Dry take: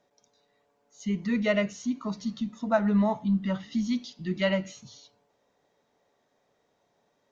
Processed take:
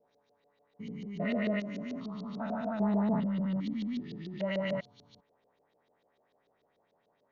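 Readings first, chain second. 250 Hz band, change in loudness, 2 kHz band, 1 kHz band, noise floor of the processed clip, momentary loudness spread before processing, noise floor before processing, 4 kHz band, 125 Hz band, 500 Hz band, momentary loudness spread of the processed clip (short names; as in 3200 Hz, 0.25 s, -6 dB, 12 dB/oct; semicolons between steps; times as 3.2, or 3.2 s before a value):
-4.5 dB, -5.5 dB, -7.0 dB, -5.5 dB, -75 dBFS, 10 LU, -73 dBFS, -8.5 dB, -4.0 dB, -6.0 dB, 13 LU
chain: stepped spectrum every 0.4 s; LFO low-pass saw up 6.8 Hz 400–4600 Hz; de-hum 358.6 Hz, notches 3; gain -2.5 dB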